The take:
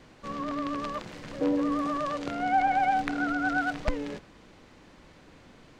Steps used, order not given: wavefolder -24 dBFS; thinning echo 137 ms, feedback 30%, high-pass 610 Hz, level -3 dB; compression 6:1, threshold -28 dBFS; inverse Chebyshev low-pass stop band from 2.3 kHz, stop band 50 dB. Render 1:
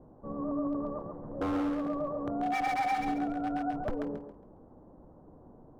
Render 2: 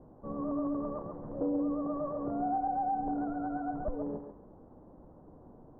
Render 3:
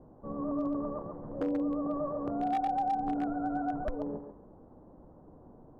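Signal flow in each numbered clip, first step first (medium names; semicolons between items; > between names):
inverse Chebyshev low-pass > wavefolder > compression > thinning echo; compression > thinning echo > wavefolder > inverse Chebyshev low-pass; inverse Chebyshev low-pass > compression > thinning echo > wavefolder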